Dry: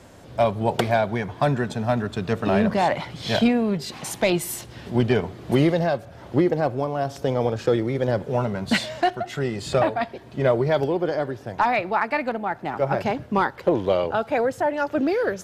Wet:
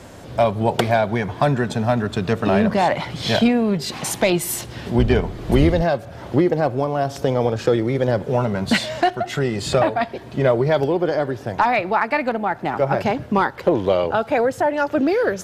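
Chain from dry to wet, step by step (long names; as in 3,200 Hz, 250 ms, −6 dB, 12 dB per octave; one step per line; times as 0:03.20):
0:04.98–0:05.82: sub-octave generator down 2 octaves, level −1 dB
in parallel at +2 dB: downward compressor, threshold −27 dBFS, peak gain reduction 13.5 dB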